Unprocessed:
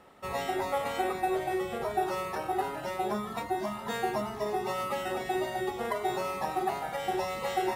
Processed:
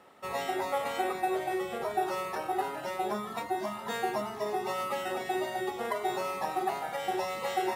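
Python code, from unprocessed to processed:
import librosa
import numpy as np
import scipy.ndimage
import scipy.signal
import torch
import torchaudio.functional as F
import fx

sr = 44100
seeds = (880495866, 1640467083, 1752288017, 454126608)

y = fx.highpass(x, sr, hz=230.0, slope=6)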